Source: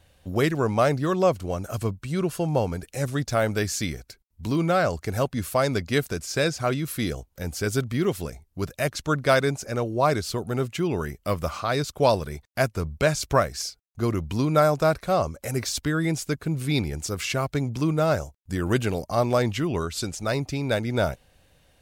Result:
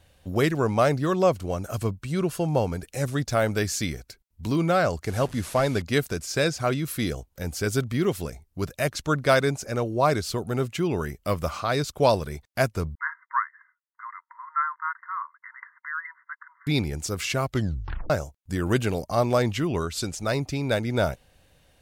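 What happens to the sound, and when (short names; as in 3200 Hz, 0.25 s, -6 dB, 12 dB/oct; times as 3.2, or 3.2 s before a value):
5.07–5.82 delta modulation 64 kbps, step -37.5 dBFS
12.95–16.67 brick-wall FIR band-pass 920–2100 Hz
17.49 tape stop 0.61 s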